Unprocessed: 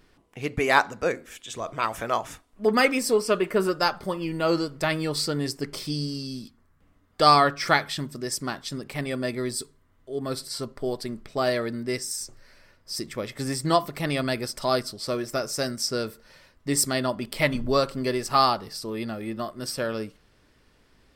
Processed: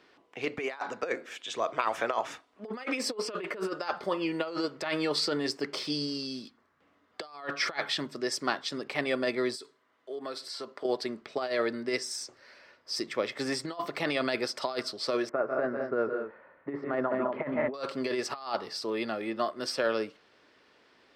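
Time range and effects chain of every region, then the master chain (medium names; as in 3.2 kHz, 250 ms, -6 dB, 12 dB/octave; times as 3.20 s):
9.55–10.85 s: high-pass 350 Hz 6 dB/octave + compression 12:1, threshold -34 dBFS
15.29–17.74 s: low-pass 1.6 kHz 24 dB/octave + multi-tap echo 145/168/207 ms -11.5/-10.5/-9.5 dB
whole clip: high-pass 95 Hz; compressor with a negative ratio -27 dBFS, ratio -0.5; three-band isolator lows -17 dB, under 290 Hz, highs -19 dB, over 5.7 kHz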